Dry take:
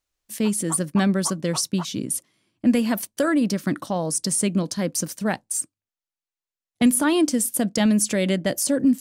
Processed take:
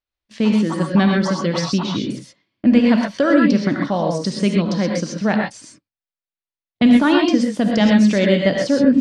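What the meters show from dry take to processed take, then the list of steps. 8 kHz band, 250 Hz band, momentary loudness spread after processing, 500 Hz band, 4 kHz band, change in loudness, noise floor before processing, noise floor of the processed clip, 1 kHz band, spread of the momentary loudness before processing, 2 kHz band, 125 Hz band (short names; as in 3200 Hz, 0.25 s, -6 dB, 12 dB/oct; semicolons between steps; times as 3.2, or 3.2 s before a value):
-11.5 dB, +6.5 dB, 8 LU, +7.0 dB, +4.5 dB, +5.5 dB, under -85 dBFS, under -85 dBFS, +6.5 dB, 7 LU, +7.0 dB, +6.0 dB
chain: gate -43 dBFS, range -11 dB; LPF 4600 Hz 24 dB/oct; non-linear reverb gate 0.15 s rising, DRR 0.5 dB; gain +4 dB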